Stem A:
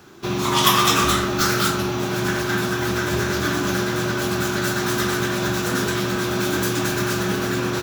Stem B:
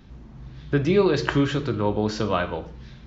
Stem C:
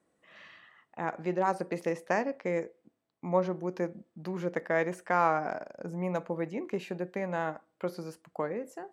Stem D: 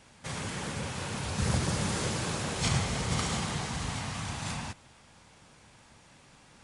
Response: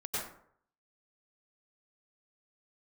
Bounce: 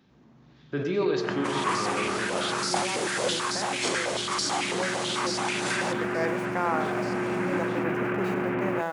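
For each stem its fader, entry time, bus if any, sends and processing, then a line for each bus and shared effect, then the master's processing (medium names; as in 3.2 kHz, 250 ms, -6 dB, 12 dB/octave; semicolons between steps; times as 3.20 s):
-14.5 dB, 1.00 s, no send, square wave that keeps the level; steep low-pass 2.6 kHz 48 dB/octave
-12.0 dB, 0.00 s, send -7.5 dB, none
-6.0 dB, 1.45 s, send -13.5 dB, small samples zeroed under -47 dBFS
-4.0 dB, 1.20 s, no send, level rider gain up to 8.5 dB; step-sequenced high-pass 9.1 Hz 370–4800 Hz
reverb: on, RT60 0.65 s, pre-delay 87 ms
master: gain riding 0.5 s; high-pass 180 Hz 12 dB/octave; decay stretcher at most 41 dB/s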